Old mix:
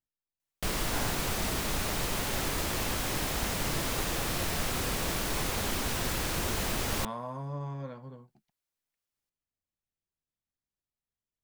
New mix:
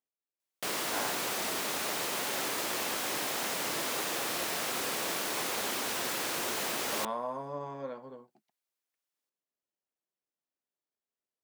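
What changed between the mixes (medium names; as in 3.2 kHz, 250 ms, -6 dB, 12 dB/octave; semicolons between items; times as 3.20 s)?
speech: add peaking EQ 420 Hz +5.5 dB 2.7 oct; master: add high-pass 330 Hz 12 dB/octave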